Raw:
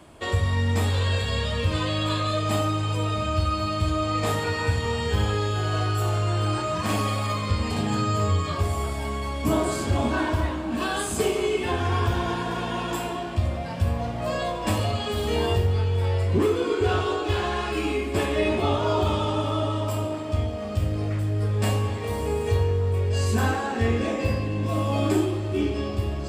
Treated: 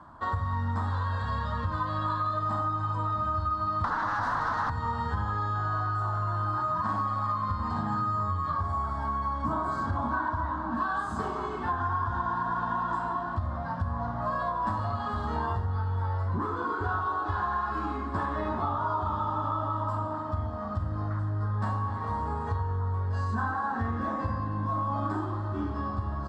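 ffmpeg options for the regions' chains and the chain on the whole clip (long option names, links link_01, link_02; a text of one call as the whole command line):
ffmpeg -i in.wav -filter_complex "[0:a]asettb=1/sr,asplit=3[link_01][link_02][link_03];[link_01]atrim=end=3.844[link_04];[link_02]atrim=start=3.84:end=4.7,asetpts=PTS-STARTPTS,afade=type=in:duration=0.004:curve=qsin,afade=type=out:start_time=0.856:duration=0.004:curve=qsin,aeval=exprs='0.266*sin(PI/2*6.31*val(0)/0.266)':channel_layout=same,acrossover=split=610|1700[link_05][link_06][link_07];[link_05]acompressor=threshold=-28dB:ratio=4[link_08];[link_06]acompressor=threshold=-27dB:ratio=4[link_09];[link_07]acompressor=threshold=-29dB:ratio=4[link_10];[link_08][link_09][link_10]amix=inputs=3:normalize=0[link_11];[link_03]atrim=start=4.696[link_12];[link_04][link_11]acrossfade=duration=0.004:curve1=hsin:curve2=qsin[link_13];[link_13][link_12]acrossfade=duration=0.004:curve1=qsin:curve2=hsin,firequalizer=gain_entry='entry(260,0);entry(400,-12);entry(1000,12);entry(1600,5);entry(2400,-22);entry(3900,-9);entry(11000,-28)':delay=0.05:min_phase=1,acompressor=threshold=-23dB:ratio=6,volume=-3dB" out.wav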